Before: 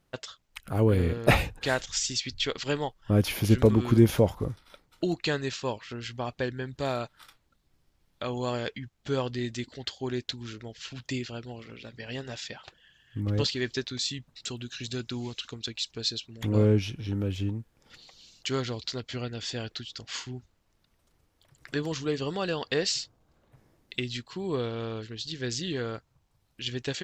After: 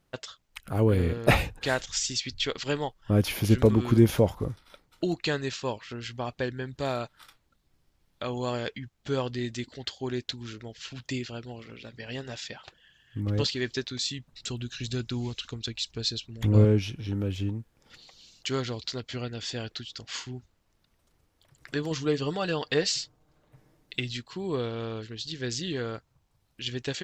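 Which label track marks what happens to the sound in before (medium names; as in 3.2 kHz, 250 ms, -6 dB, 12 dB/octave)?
14.320000	16.650000	bass shelf 110 Hz +11.5 dB
21.900000	24.110000	comb 6.6 ms, depth 44%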